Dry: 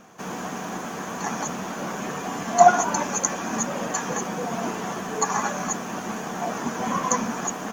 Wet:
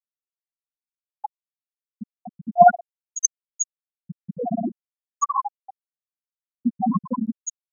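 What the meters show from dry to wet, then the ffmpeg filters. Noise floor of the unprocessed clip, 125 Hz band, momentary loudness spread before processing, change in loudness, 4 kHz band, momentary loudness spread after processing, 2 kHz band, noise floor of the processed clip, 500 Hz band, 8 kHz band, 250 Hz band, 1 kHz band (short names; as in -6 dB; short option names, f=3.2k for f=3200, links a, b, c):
-33 dBFS, -2.0 dB, 11 LU, +2.5 dB, under -40 dB, 23 LU, -7.5 dB, under -85 dBFS, 0.0 dB, -1.5 dB, +0.5 dB, 0.0 dB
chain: -af "aphaser=in_gain=1:out_gain=1:delay=1.3:decay=0.52:speed=0.44:type=triangular,afftfilt=real='re*gte(hypot(re,im),0.562)':imag='im*gte(hypot(re,im),0.562)':win_size=1024:overlap=0.75,volume=4dB"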